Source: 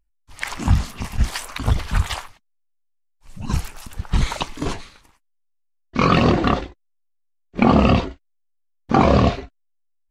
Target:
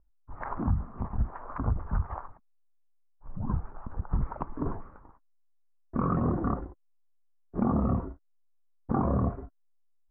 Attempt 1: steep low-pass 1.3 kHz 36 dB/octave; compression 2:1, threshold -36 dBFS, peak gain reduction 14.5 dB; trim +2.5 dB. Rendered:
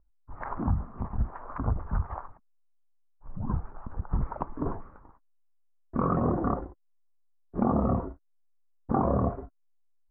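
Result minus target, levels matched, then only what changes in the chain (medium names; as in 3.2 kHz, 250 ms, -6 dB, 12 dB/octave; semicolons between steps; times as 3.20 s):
500 Hz band +3.0 dB
add after steep low-pass: dynamic bell 630 Hz, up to -7 dB, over -31 dBFS, Q 0.78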